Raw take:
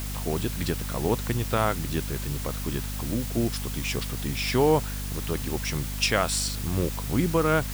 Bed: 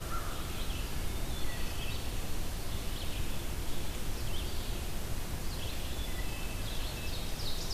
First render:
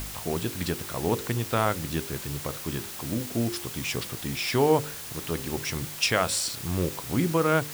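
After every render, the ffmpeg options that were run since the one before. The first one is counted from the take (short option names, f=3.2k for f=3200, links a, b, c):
-af "bandreject=f=50:t=h:w=4,bandreject=f=100:t=h:w=4,bandreject=f=150:t=h:w=4,bandreject=f=200:t=h:w=4,bandreject=f=250:t=h:w=4,bandreject=f=300:t=h:w=4,bandreject=f=350:t=h:w=4,bandreject=f=400:t=h:w=4,bandreject=f=450:t=h:w=4,bandreject=f=500:t=h:w=4,bandreject=f=550:t=h:w=4"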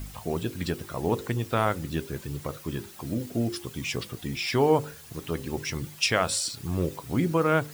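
-af "afftdn=nr=11:nf=-39"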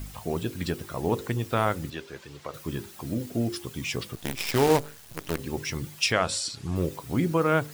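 -filter_complex "[0:a]asettb=1/sr,asplit=3[a][b][c];[a]atrim=end=1.904[d];[b]atrim=start=1.9:end=2.54,asetpts=PTS-STARTPTS,afade=t=in:d=0.004:c=qsin,afade=t=out:st=0.636:d=0.004:c=qsin,acrossover=split=430 6300:gain=0.224 1 0.178[e][f][g];[e][f][g]amix=inputs=3:normalize=0[h];[c]atrim=start=2.536[i];[d][h]acrossfade=d=0.004:c1=hsin:c2=qsin[j];[j][i]acrossfade=d=0.004:c1=qsin:c2=hsin,asettb=1/sr,asplit=3[k][l][m];[k]atrim=end=4.154[n];[l]atrim=start=4.15:end=5.39,asetpts=PTS-STARTPTS,afade=t=in:d=0.004:c=qsin,afade=t=out:st=1.236:d=0.004:c=qsin,acrusher=bits=5:dc=4:mix=0:aa=0.000001[o];[m]atrim=start=5.386[p];[n][o]acrossfade=d=0.004:c1=hsin:c2=qsin[q];[q][p]acrossfade=d=0.004:c1=qsin:c2=hsin,asettb=1/sr,asplit=3[r][s][t];[r]atrim=end=6.124[u];[s]atrim=start=6.12:end=6.76,asetpts=PTS-STARTPTS,afade=t=in:d=0.004:c=qsin,afade=t=out:st=0.636:d=0.004:c=qsin,lowpass=7.9k[v];[t]atrim=start=6.756[w];[u][v]acrossfade=d=0.004:c1=hsin:c2=qsin[x];[x][w]acrossfade=d=0.004:c1=qsin:c2=hsin"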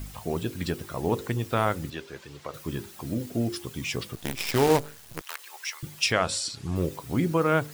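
-filter_complex "[0:a]asettb=1/sr,asplit=3[a][b][c];[a]atrim=end=5.214[d];[b]atrim=start=5.21:end=5.83,asetpts=PTS-STARTPTS,afade=t=in:d=0.004:c=qsin,afade=t=out:st=0.616:d=0.004:c=qsin,highpass=f=910:w=0.5412,highpass=f=910:w=1.3066[e];[c]atrim=start=5.826[f];[d][e]acrossfade=d=0.004:c1=hsin:c2=qsin[g];[g][f]acrossfade=d=0.004:c1=qsin:c2=hsin"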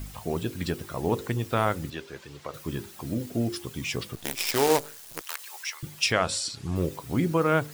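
-filter_complex "[0:a]asettb=1/sr,asplit=3[a][b][c];[a]atrim=end=4.244[d];[b]atrim=start=4.24:end=5.63,asetpts=PTS-STARTPTS,afade=t=in:d=0.004:c=qsin,afade=t=out:st=1.386:d=0.004:c=qsin,bass=f=250:g=-10,treble=f=4k:g=5[e];[c]atrim=start=5.626[f];[d][e]acrossfade=d=0.004:c1=hsin:c2=qsin[g];[g][f]acrossfade=d=0.004:c1=qsin:c2=hsin"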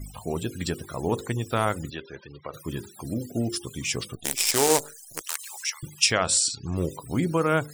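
-af "afftfilt=real='re*gte(hypot(re,im),0.00562)':imag='im*gte(hypot(re,im),0.00562)':win_size=1024:overlap=0.75,equalizer=f=8.1k:w=1:g=11.5"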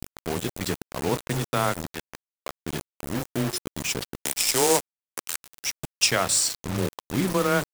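-af "afreqshift=13,acrusher=bits=4:mix=0:aa=0.000001"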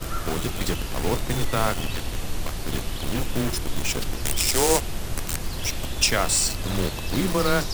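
-filter_complex "[1:a]volume=7dB[a];[0:a][a]amix=inputs=2:normalize=0"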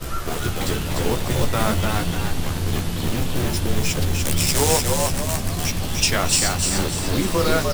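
-filter_complex "[0:a]asplit=2[a][b];[b]adelay=14,volume=-5.5dB[c];[a][c]amix=inputs=2:normalize=0,asplit=7[d][e][f][g][h][i][j];[e]adelay=298,afreqshift=82,volume=-3.5dB[k];[f]adelay=596,afreqshift=164,volume=-10.4dB[l];[g]adelay=894,afreqshift=246,volume=-17.4dB[m];[h]adelay=1192,afreqshift=328,volume=-24.3dB[n];[i]adelay=1490,afreqshift=410,volume=-31.2dB[o];[j]adelay=1788,afreqshift=492,volume=-38.2dB[p];[d][k][l][m][n][o][p]amix=inputs=7:normalize=0"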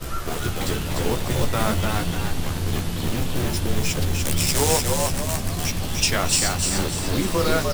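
-af "volume=-1.5dB"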